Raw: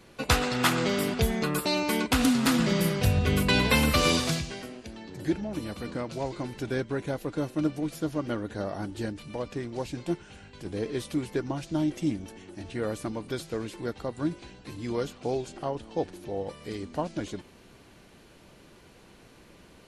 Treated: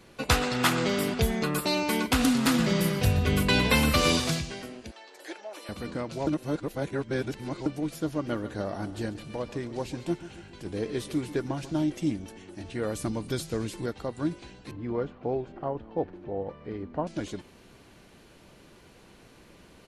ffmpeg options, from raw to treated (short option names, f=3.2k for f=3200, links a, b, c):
-filter_complex "[0:a]asettb=1/sr,asplit=3[a][b][c];[a]atrim=end=1.404[d];[b]atrim=start=1.4:end=4.25,asetpts=PTS-STARTPTS,afade=t=in:d=0.004:c=qsin,afade=t=out:st=2.846:d=0.004:c=qsin,aecho=1:1:122:0.141,atrim=end_sample=125685[e];[c]atrim=start=4.246[f];[d][e]acrossfade=d=0.004:c1=hsin:c2=qsin[g];[g][f]acrossfade=d=0.004:c1=qsin:c2=hsin,asettb=1/sr,asplit=3[h][i][j];[h]atrim=end=4.914[k];[i]atrim=start=4.91:end=5.69,asetpts=PTS-STARTPTS,afade=t=in:d=0.004:c=qsin,afade=t=out:st=0.776:d=0.004:c=qsin,highpass=f=520:w=0.5412,highpass=f=520:w=1.3066[l];[j]atrim=start=5.686[m];[k][l]acrossfade=d=0.004:c1=hsin:c2=qsin[n];[n][m]acrossfade=d=0.004:c1=qsin:c2=hsin,asplit=3[o][p][q];[o]afade=t=out:st=8.26:d=0.02[r];[p]aecho=1:1:140|280|420|560|700:0.178|0.0996|0.0558|0.0312|0.0175,afade=t=in:st=8.26:d=0.02,afade=t=out:st=11.85:d=0.02[s];[q]afade=t=in:st=11.85:d=0.02[t];[r][s][t]amix=inputs=3:normalize=0,asettb=1/sr,asplit=3[u][v][w];[u]atrim=end=12.954[x];[v]atrim=start=12.95:end=13.86,asetpts=PTS-STARTPTS,afade=t=in:d=0.004:c=qsin,afade=t=out:st=0.906:d=0.004:c=qsin,bass=f=250:g=6,treble=f=4k:g=6[y];[w]atrim=start=13.856[z];[x][y]acrossfade=d=0.004:c1=hsin:c2=qsin[aa];[aa][z]acrossfade=d=0.004:c1=qsin:c2=hsin,asettb=1/sr,asplit=3[ab][ac][ad];[ab]atrim=end=14.714[ae];[ac]atrim=start=14.71:end=17.07,asetpts=PTS-STARTPTS,afade=t=in:d=0.004:c=qsin,afade=t=out:st=2.356:d=0.004:c=qsin,lowpass=1.6k[af];[ad]atrim=start=17.066[ag];[ae][af]acrossfade=d=0.004:c1=hsin:c2=qsin[ah];[ah][ag]acrossfade=d=0.004:c1=qsin:c2=hsin,asplit=3[ai][aj][ak];[ai]atrim=end=6.272[al];[aj]atrim=start=6.268:end=7.662,asetpts=PTS-STARTPTS,areverse[am];[ak]atrim=start=7.658[an];[al][am]acrossfade=d=0.004:c1=hsin:c2=hsin[ao];[ao][an]acrossfade=d=0.004:c1=hsin:c2=hsin"